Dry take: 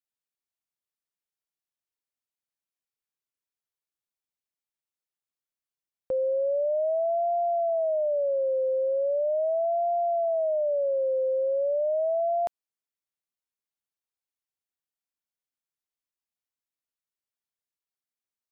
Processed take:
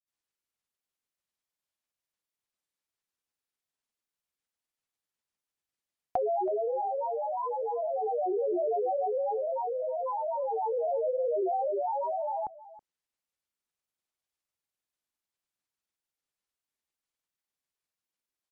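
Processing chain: low-pass that closes with the level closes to 410 Hz, closed at -26.5 dBFS; granulator 100 ms, grains 20 per s, pitch spread up and down by 7 st; on a send: delay 324 ms -17.5 dB; on the sum: trim +4 dB

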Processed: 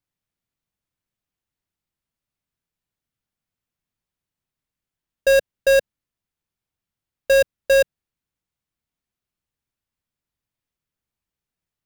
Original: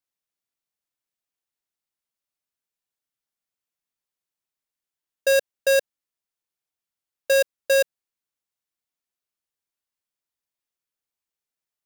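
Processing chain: tone controls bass +14 dB, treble -5 dB; trim +3 dB

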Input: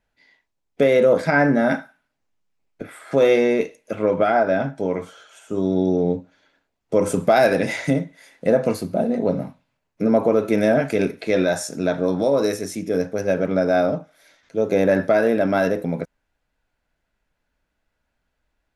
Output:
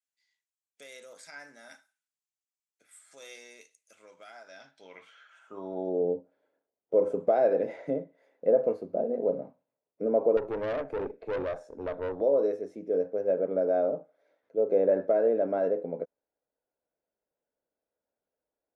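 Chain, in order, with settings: band-pass sweep 7.8 kHz -> 490 Hz, 4.40–6.01 s; 10.37–12.21 s: valve stage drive 24 dB, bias 0.55; trim -3.5 dB

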